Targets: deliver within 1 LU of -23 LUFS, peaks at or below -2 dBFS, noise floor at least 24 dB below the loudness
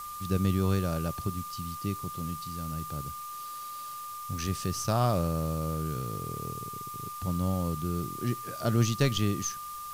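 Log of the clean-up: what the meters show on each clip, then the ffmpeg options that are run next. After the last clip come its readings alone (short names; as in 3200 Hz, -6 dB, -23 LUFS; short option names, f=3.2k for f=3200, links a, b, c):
steady tone 1200 Hz; tone level -38 dBFS; noise floor -40 dBFS; noise floor target -56 dBFS; loudness -31.5 LUFS; peak -13.5 dBFS; loudness target -23.0 LUFS
-> -af "bandreject=f=1.2k:w=30"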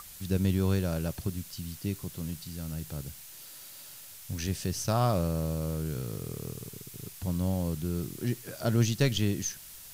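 steady tone none; noise floor -48 dBFS; noise floor target -56 dBFS
-> -af "afftdn=nr=8:nf=-48"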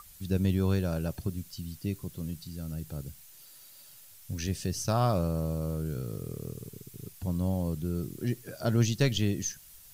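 noise floor -53 dBFS; noise floor target -56 dBFS
-> -af "afftdn=nr=6:nf=-53"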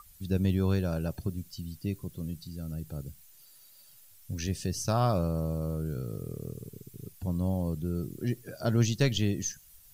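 noise floor -56 dBFS; loudness -32.0 LUFS; peak -13.5 dBFS; loudness target -23.0 LUFS
-> -af "volume=9dB"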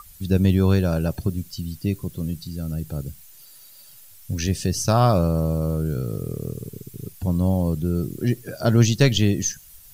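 loudness -23.0 LUFS; peak -4.5 dBFS; noise floor -47 dBFS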